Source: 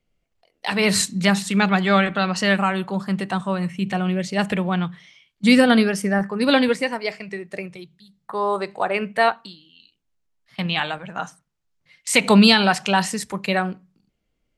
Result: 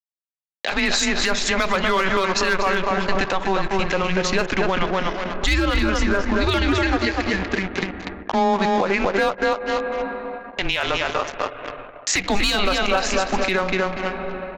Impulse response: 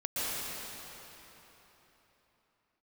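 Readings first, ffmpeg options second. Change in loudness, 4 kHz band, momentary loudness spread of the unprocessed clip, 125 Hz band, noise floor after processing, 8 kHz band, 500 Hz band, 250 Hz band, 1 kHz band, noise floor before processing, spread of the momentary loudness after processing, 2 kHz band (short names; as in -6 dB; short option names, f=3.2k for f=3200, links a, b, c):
-1.5 dB, 0.0 dB, 17 LU, -3.0 dB, -43 dBFS, +0.5 dB, +1.5 dB, -4.5 dB, +1.5 dB, -74 dBFS, 8 LU, +1.5 dB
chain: -filter_complex "[0:a]asplit=2[a][b];[b]adelay=242,lowpass=f=2.2k:p=1,volume=-4dB,asplit=2[c][d];[d]adelay=242,lowpass=f=2.2k:p=1,volume=0.35,asplit=2[e][f];[f]adelay=242,lowpass=f=2.2k:p=1,volume=0.35,asplit=2[g][h];[h]adelay=242,lowpass=f=2.2k:p=1,volume=0.35[i];[a][c][e][g][i]amix=inputs=5:normalize=0,aeval=exprs='sgn(val(0))*max(abs(val(0))-0.0188,0)':c=same,aresample=16000,aresample=44100,highpass=f=440:p=1,asplit=2[j][k];[k]highshelf=f=4.8k:g=-11.5[l];[1:a]atrim=start_sample=2205,lowpass=3.4k,adelay=50[m];[l][m]afir=irnorm=-1:irlink=0,volume=-26.5dB[n];[j][n]amix=inputs=2:normalize=0,aeval=exprs='clip(val(0),-1,0.251)':c=same,acompressor=threshold=-39dB:ratio=3,anlmdn=0.000251,afreqshift=-190,alimiter=level_in=30dB:limit=-1dB:release=50:level=0:latency=1,volume=-9dB"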